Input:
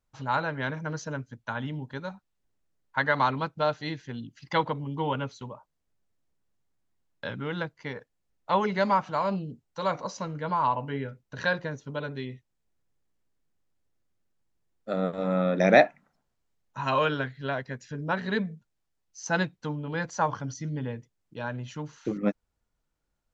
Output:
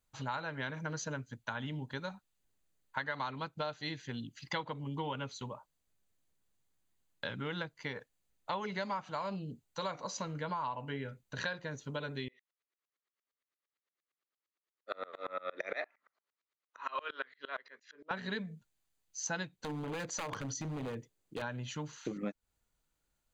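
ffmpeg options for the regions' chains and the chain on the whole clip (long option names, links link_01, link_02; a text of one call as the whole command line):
ffmpeg -i in.wav -filter_complex "[0:a]asettb=1/sr,asplit=3[link_01][link_02][link_03];[link_01]atrim=end=12.284[link_04];[link_02]atrim=start=12.28:end=18.11,asetpts=PTS-STARTPTS,afade=type=in:duration=0.004:curve=qsin,afade=type=out:start_time=5.826:duration=0.004:curve=qsin,highpass=frequency=370:width=0.5412,highpass=frequency=370:width=1.3066,equalizer=frequency=760:width_type=q:width=4:gain=-6,equalizer=frequency=1200:width_type=q:width=4:gain=9,equalizer=frequency=2000:width_type=q:width=4:gain=6,lowpass=frequency=5500:width=0.5412,lowpass=frequency=5500:width=1.3066,aeval=exprs='val(0)*pow(10,-29*if(lt(mod(-8.7*n/s,1),2*abs(-8.7)/1000),1-mod(-8.7*n/s,1)/(2*abs(-8.7)/1000),(mod(-8.7*n/s,1)-2*abs(-8.7)/1000)/(1-2*abs(-8.7)/1000))/20)':channel_layout=same[link_05];[link_03]atrim=start=18.106[link_06];[link_04][link_05]acrossfade=duration=0.004:curve1=hsin:curve2=qsin[link_07];[link_07][link_06]acrossfade=duration=0.004:curve1=qsin:curve2=hsin,asettb=1/sr,asplit=3[link_08][link_09][link_10];[link_08]atrim=end=19.604[link_11];[link_09]atrim=start=19.6:end=21.42,asetpts=PTS-STARTPTS,afade=type=in:duration=0.004:curve=qsin,afade=type=out:start_time=1.816:duration=0.004:curve=qsin,equalizer=frequency=410:width_type=o:width=1.4:gain=8.5,acompressor=threshold=-29dB:ratio=6:attack=3.2:release=140:knee=1:detection=peak,aeval=exprs='0.0335*(abs(mod(val(0)/0.0335+3,4)-2)-1)':channel_layout=same[link_12];[link_10]atrim=start=21.416[link_13];[link_11][link_12]acrossfade=duration=0.004:curve1=hsin:curve2=qsin[link_14];[link_14][link_13]acrossfade=duration=0.004:curve1=qsin:curve2=hsin,highshelf=frequency=2300:gain=9,bandreject=frequency=5400:width=6.2,acompressor=threshold=-32dB:ratio=5,volume=-3dB" out.wav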